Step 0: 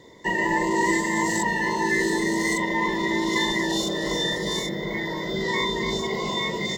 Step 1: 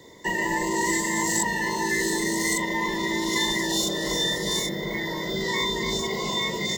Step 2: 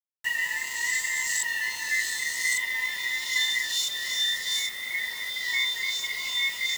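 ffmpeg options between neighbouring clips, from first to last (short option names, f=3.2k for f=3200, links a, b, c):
-filter_complex "[0:a]highshelf=f=7.4k:g=12,acrossover=split=130|3000[a][b][c];[b]acompressor=threshold=-29dB:ratio=1.5[d];[a][d][c]amix=inputs=3:normalize=0"
-af "highpass=f=2.3k:t=q:w=3,acrusher=bits=5:mix=0:aa=0.000001,volume=-3.5dB"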